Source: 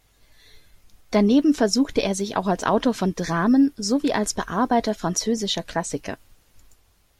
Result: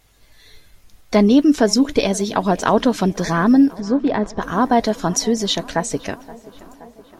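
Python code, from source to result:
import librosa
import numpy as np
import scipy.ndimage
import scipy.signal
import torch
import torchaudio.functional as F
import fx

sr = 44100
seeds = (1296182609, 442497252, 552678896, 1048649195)

p1 = fx.spacing_loss(x, sr, db_at_10k=29, at=(3.79, 4.41), fade=0.02)
p2 = p1 + fx.echo_tape(p1, sr, ms=522, feedback_pct=77, wet_db=-20, lp_hz=2700.0, drive_db=5.0, wow_cents=37, dry=0)
y = p2 * librosa.db_to_amplitude(4.5)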